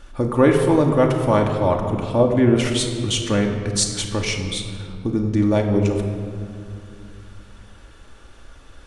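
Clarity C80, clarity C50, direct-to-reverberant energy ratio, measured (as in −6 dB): 6.5 dB, 5.5 dB, 1.5 dB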